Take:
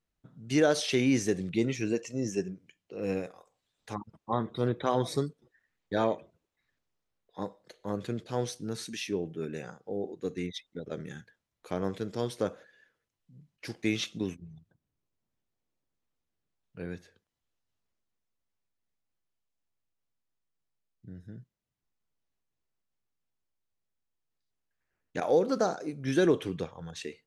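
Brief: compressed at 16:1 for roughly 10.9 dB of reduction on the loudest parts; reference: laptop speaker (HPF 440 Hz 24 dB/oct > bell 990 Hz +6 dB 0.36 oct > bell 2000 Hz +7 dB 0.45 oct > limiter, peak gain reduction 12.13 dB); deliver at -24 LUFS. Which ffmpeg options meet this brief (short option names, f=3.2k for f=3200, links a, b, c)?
-af "acompressor=threshold=-30dB:ratio=16,highpass=f=440:w=0.5412,highpass=f=440:w=1.3066,equalizer=f=990:t=o:w=0.36:g=6,equalizer=f=2k:t=o:w=0.45:g=7,volume=20.5dB,alimiter=limit=-12dB:level=0:latency=1"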